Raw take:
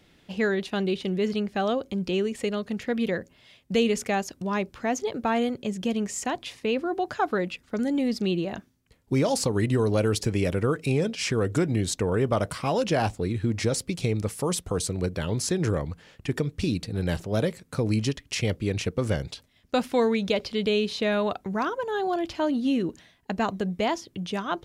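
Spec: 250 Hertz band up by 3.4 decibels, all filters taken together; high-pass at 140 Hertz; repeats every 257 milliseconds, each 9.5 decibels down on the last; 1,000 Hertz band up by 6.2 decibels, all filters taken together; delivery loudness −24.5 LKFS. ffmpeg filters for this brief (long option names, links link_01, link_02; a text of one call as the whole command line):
ffmpeg -i in.wav -af "highpass=140,equalizer=frequency=250:width_type=o:gain=4.5,equalizer=frequency=1000:width_type=o:gain=8,aecho=1:1:257|514|771|1028:0.335|0.111|0.0365|0.012,volume=-0.5dB" out.wav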